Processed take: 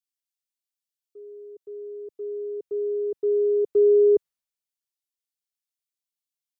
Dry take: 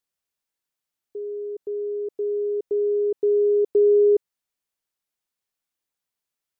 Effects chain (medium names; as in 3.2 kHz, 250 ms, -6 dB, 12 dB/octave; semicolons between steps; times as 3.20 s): three bands expanded up and down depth 70%; trim -2.5 dB